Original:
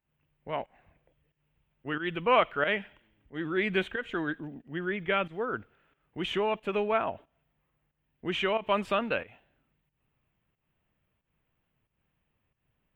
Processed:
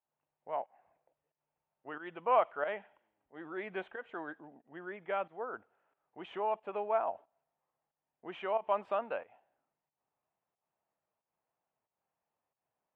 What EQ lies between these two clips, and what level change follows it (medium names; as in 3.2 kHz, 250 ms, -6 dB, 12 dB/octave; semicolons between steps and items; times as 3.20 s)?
band-pass filter 780 Hz, Q 2.2; 0.0 dB